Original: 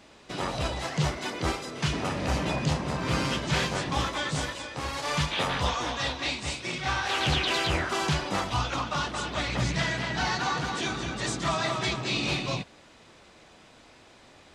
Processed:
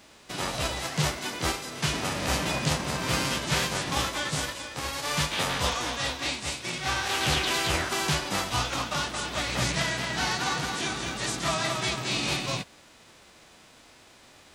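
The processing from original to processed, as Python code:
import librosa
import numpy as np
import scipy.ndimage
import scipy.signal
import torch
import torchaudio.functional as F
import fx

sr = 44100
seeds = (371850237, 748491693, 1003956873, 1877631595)

y = fx.envelope_flatten(x, sr, power=0.6)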